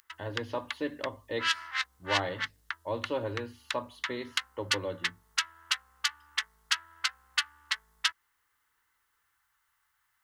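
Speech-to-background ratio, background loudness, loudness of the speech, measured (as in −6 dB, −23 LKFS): −4.0 dB, −33.5 LKFS, −37.5 LKFS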